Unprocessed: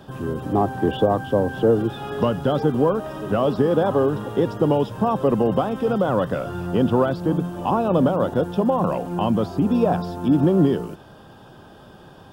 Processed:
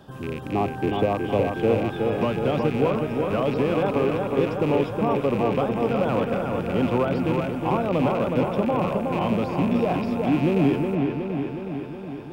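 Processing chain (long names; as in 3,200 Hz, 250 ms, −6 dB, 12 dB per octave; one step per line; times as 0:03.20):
loose part that buzzes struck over −26 dBFS, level −22 dBFS
delay with a low-pass on its return 367 ms, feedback 66%, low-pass 2,800 Hz, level −4 dB
level −4.5 dB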